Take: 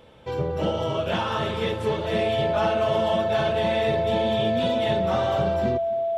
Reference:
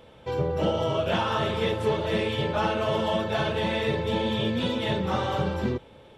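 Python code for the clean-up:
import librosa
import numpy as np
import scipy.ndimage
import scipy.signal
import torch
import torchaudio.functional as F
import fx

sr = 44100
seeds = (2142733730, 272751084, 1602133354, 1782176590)

y = fx.notch(x, sr, hz=670.0, q=30.0)
y = fx.fix_echo_inverse(y, sr, delay_ms=268, level_db=-22.5)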